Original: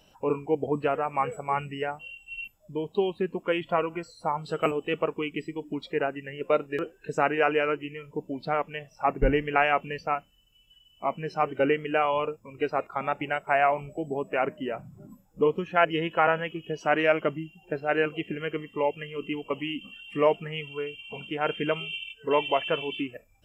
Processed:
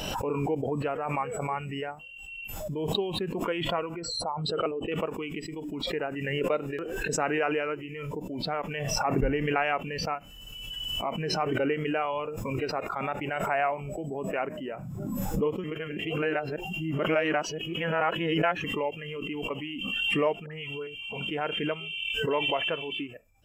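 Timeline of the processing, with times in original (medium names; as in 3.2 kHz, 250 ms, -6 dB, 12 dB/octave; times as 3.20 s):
3.96–4.92 s: resonances exaggerated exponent 1.5
15.64–18.64 s: reverse
20.46–20.87 s: phase dispersion highs, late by 61 ms, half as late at 1.3 kHz
whole clip: swell ahead of each attack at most 26 dB/s; trim -5 dB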